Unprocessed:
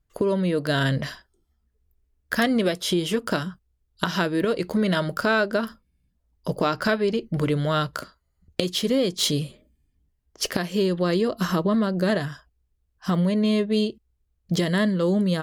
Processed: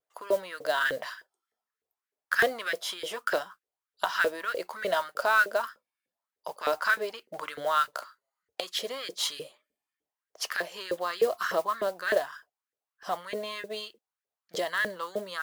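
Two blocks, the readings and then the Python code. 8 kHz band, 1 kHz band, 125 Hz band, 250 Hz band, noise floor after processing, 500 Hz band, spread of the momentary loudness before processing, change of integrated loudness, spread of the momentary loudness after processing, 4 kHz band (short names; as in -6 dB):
-6.0 dB, -0.5 dB, -30.0 dB, -23.5 dB, under -85 dBFS, -6.0 dB, 8 LU, -6.0 dB, 15 LU, -6.0 dB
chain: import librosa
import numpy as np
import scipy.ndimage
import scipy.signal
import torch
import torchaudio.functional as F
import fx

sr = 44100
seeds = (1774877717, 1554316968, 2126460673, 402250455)

y = fx.filter_lfo_highpass(x, sr, shape='saw_up', hz=3.3, low_hz=460.0, high_hz=1800.0, q=4.1)
y = fx.vibrato(y, sr, rate_hz=0.72, depth_cents=23.0)
y = fx.mod_noise(y, sr, seeds[0], snr_db=22)
y = F.gain(torch.from_numpy(y), -7.0).numpy()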